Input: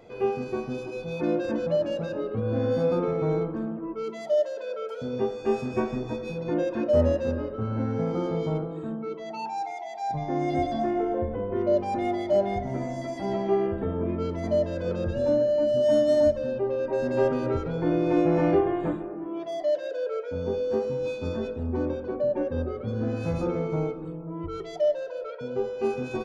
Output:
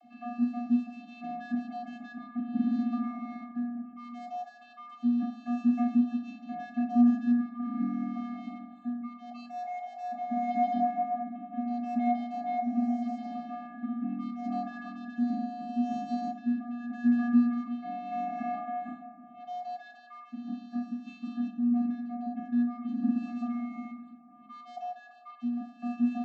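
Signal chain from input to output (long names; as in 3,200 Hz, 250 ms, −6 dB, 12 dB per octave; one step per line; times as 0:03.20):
0:14.49–0:14.90: parametric band 1,200 Hz +13.5 dB 0.88 octaves
channel vocoder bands 32, square 240 Hz
on a send: convolution reverb RT60 0.35 s, pre-delay 19 ms, DRR 8 dB
on the sum: level −2.5 dB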